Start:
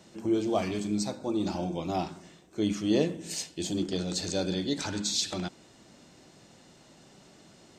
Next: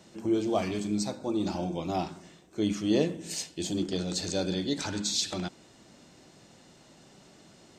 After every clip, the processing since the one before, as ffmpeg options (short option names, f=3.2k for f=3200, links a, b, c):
-af anull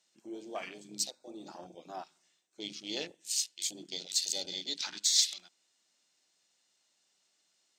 -af "bandpass=f=7.1k:t=q:w=0.51:csg=0,acrusher=bits=8:mode=log:mix=0:aa=0.000001,afwtdn=0.00562,volume=4.5dB"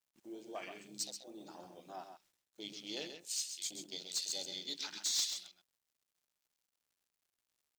-af "asoftclip=type=tanh:threshold=-23.5dB,acrusher=bits=10:mix=0:aa=0.000001,aecho=1:1:132:0.398,volume=-5dB"